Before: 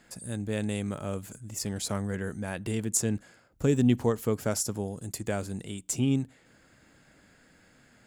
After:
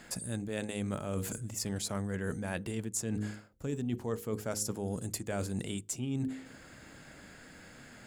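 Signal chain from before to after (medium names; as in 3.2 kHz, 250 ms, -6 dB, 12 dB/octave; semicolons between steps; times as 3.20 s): de-hum 52.49 Hz, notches 10; reverse; compression 12:1, threshold -39 dBFS, peak gain reduction 21 dB; reverse; trim +7.5 dB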